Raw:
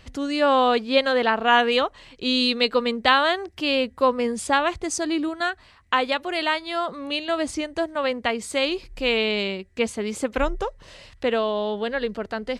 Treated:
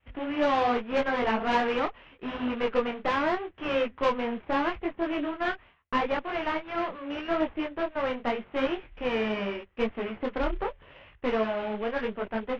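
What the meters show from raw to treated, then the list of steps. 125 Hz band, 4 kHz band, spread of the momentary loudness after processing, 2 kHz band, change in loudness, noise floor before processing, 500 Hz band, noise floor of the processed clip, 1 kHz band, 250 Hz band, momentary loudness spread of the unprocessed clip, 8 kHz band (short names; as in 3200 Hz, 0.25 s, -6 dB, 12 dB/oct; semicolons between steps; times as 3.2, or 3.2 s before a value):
n/a, -14.0 dB, 7 LU, -8.0 dB, -6.5 dB, -53 dBFS, -5.5 dB, -58 dBFS, -6.0 dB, -4.0 dB, 9 LU, under -20 dB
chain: CVSD 16 kbps; expander -44 dBFS; bell 130 Hz -3 dB 1.7 oct; added harmonics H 8 -21 dB, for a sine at -8.5 dBFS; detuned doubles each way 28 cents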